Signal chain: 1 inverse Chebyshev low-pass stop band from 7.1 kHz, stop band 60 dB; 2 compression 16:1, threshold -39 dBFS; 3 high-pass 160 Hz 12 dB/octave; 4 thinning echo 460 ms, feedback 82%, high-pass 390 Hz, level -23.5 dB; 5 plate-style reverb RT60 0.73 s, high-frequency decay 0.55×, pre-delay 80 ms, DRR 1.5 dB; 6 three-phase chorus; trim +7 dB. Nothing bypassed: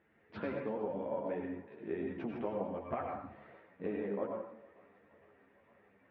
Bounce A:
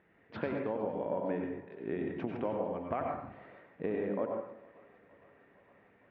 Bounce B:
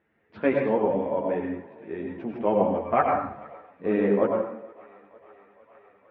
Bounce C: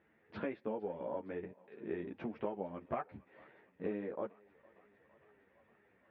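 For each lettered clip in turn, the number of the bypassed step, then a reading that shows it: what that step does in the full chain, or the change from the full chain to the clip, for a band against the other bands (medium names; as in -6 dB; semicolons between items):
6, momentary loudness spread change +2 LU; 2, mean gain reduction 10.0 dB; 5, crest factor change +3.0 dB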